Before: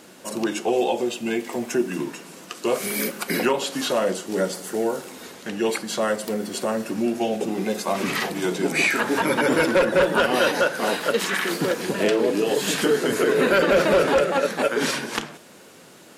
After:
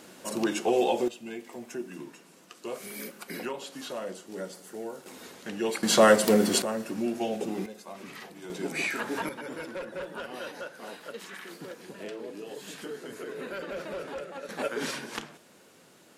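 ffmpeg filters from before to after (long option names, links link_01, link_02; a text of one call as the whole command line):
ffmpeg -i in.wav -af "asetnsamples=nb_out_samples=441:pad=0,asendcmd='1.08 volume volume -14dB;5.06 volume volume -6.5dB;5.83 volume volume 5.5dB;6.62 volume volume -6.5dB;7.66 volume volume -19dB;8.5 volume volume -10dB;9.29 volume volume -19dB;14.49 volume volume -9.5dB',volume=-3dB" out.wav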